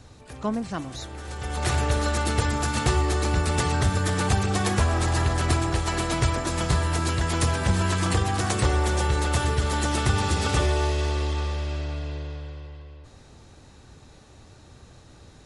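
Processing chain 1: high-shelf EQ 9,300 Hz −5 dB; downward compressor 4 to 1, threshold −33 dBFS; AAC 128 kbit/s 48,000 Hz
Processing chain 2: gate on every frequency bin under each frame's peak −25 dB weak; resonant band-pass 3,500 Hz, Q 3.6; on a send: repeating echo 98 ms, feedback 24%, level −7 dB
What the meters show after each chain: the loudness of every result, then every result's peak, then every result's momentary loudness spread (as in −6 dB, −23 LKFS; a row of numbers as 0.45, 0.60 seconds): −35.5, −41.0 LKFS; −20.5, −26.0 dBFS; 16, 14 LU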